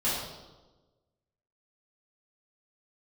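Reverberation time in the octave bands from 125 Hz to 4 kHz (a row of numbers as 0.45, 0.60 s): 1.4, 1.4, 1.3, 1.1, 0.80, 0.90 s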